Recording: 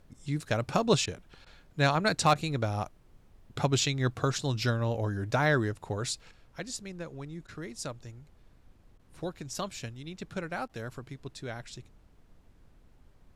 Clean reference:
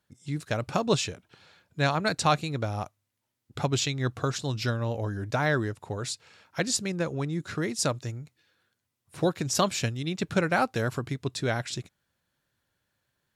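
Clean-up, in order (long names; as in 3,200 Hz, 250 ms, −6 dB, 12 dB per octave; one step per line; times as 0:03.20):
clipped peaks rebuilt −13.5 dBFS
repair the gap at 0:01.06/0:01.45/0:02.34/0:07.47/0:08.98/0:10.68, 12 ms
noise reduction from a noise print 20 dB
level 0 dB, from 0:06.31 +11 dB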